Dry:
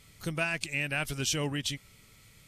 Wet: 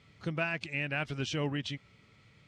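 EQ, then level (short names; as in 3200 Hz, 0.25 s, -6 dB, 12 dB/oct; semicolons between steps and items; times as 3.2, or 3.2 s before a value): HPF 86 Hz; air absorption 120 m; high shelf 6100 Hz -11.5 dB; 0.0 dB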